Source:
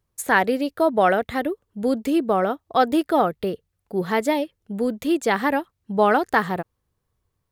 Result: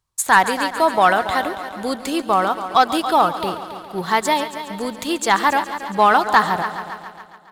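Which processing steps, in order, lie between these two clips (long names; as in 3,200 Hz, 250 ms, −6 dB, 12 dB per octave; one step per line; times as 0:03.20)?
graphic EQ with 10 bands 250 Hz −5 dB, 500 Hz −6 dB, 1,000 Hz +9 dB, 4,000 Hz +7 dB, 8,000 Hz +8 dB
on a send: echo machine with several playback heads 139 ms, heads first and second, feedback 57%, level −14.5 dB
on the sum: leveller curve on the samples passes 1
level −2 dB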